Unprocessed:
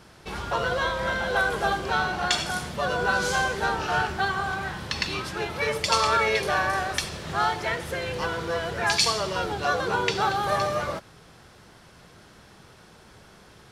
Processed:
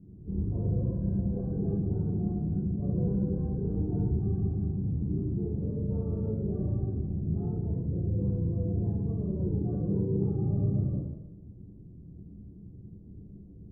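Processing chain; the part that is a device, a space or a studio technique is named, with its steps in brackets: next room (LPF 270 Hz 24 dB/oct; reverb RT60 0.95 s, pre-delay 9 ms, DRR -8.5 dB)

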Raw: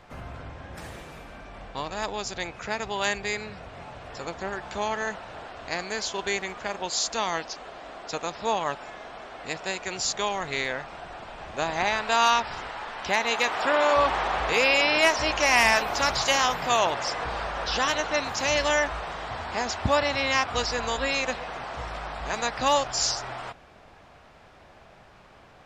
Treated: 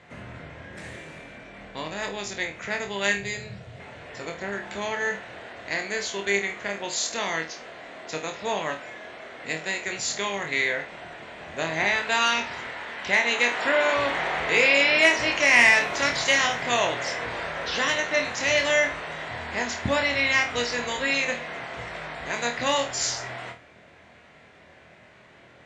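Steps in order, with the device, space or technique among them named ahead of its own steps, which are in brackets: 3.17–3.8 graphic EQ 125/250/1000/2000 Hz +11/-7/-5/-7 dB; car door speaker (speaker cabinet 100–9100 Hz, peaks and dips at 820 Hz -7 dB, 1200 Hz -6 dB, 2000 Hz +7 dB, 5100 Hz -6 dB); flutter echo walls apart 4.3 m, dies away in 0.28 s

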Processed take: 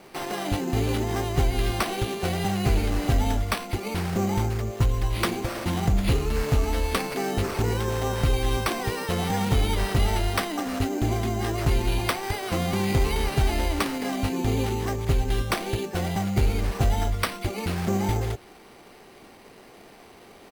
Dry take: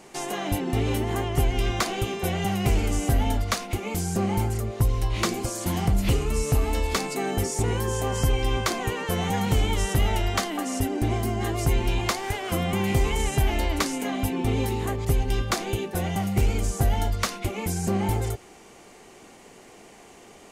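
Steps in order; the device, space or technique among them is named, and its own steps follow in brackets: crushed at another speed (playback speed 0.8×; sample-and-hold 8×; playback speed 1.25×)

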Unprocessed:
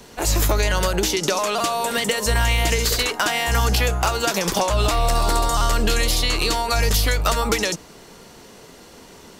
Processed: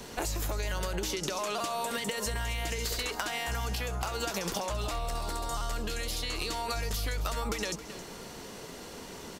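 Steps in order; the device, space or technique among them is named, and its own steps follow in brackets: serial compression, leveller first (compressor, threshold -20 dBFS, peak gain reduction 6 dB; compressor 5:1, threshold -31 dBFS, peak gain reduction 10.5 dB); echo 0.269 s -14 dB

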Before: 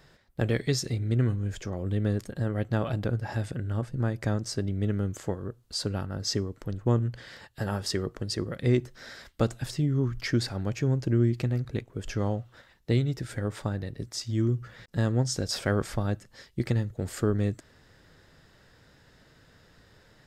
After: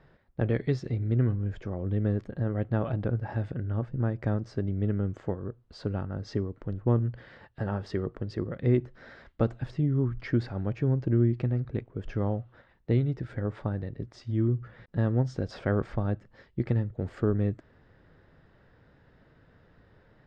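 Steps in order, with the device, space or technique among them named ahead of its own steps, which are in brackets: phone in a pocket (LPF 3200 Hz 12 dB/oct; high shelf 2200 Hz -11 dB)

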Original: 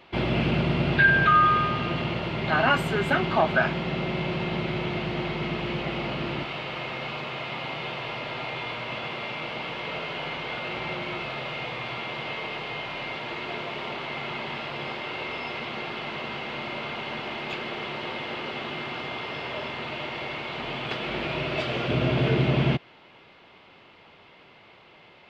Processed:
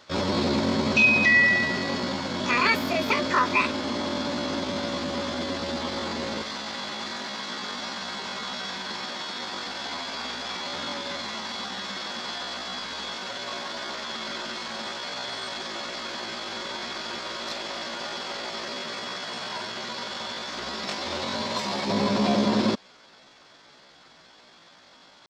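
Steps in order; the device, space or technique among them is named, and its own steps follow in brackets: chipmunk voice (pitch shift +8 st)

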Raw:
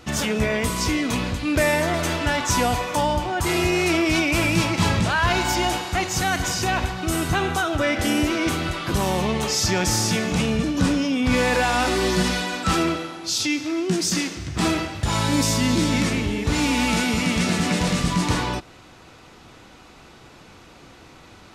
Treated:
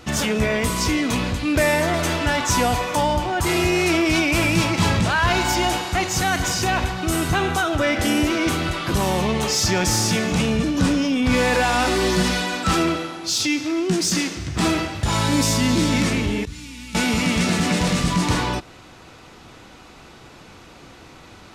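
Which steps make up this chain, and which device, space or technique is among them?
16.45–16.95 passive tone stack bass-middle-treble 6-0-2; parallel distortion (in parallel at -9.5 dB: hard clip -23 dBFS, distortion -8 dB)

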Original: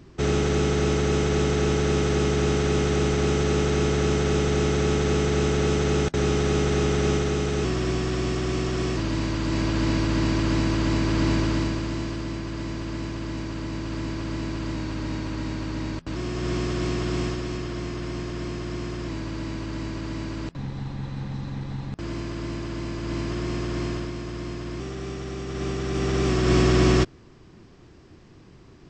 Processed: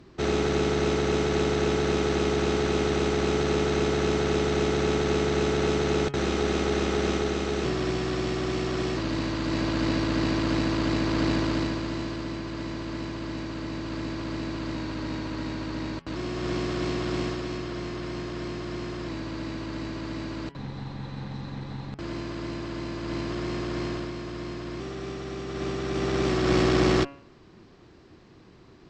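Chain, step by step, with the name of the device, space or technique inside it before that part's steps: bell 4100 Hz +5.5 dB 0.35 oct; de-hum 139.9 Hz, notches 23; tube preamp driven hard (tube stage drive 13 dB, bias 0.5; low shelf 180 Hz -7.5 dB; high shelf 4200 Hz -8.5 dB); gain +3 dB

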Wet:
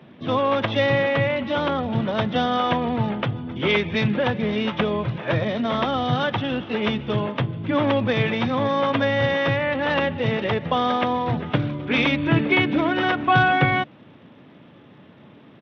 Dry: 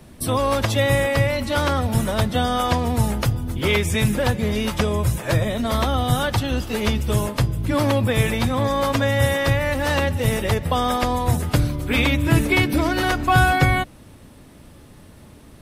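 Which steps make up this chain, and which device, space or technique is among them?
1.49–2.15 dynamic EQ 1800 Hz, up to -5 dB, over -36 dBFS, Q 1.1; Bluetooth headset (HPF 130 Hz 24 dB/oct; downsampling 8000 Hz; SBC 64 kbps 32000 Hz)

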